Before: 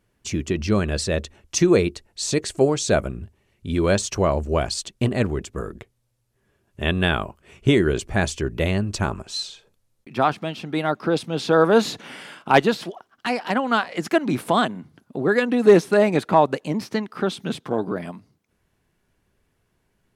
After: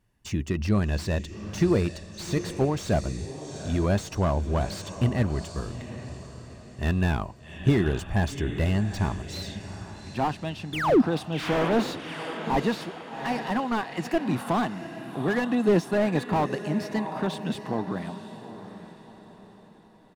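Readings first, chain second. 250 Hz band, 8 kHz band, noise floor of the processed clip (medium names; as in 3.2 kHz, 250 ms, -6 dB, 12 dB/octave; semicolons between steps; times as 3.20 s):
-3.0 dB, -11.0 dB, -50 dBFS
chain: bass shelf 200 Hz +3 dB; comb 1.1 ms, depth 38%; painted sound fall, 10.73–11.02 s, 210–3700 Hz -10 dBFS; echo that smears into a reverb 780 ms, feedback 42%, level -12.5 dB; slew-rate limiter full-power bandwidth 120 Hz; trim -5 dB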